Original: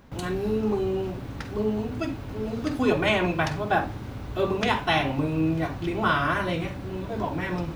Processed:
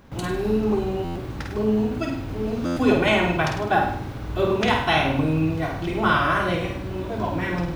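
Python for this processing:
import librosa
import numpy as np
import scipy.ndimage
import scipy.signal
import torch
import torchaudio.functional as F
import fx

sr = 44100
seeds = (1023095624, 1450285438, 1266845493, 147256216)

y = fx.room_flutter(x, sr, wall_m=8.8, rt60_s=0.59)
y = fx.buffer_glitch(y, sr, at_s=(1.04, 2.65), block=512, repeats=9)
y = y * 10.0 ** (2.0 / 20.0)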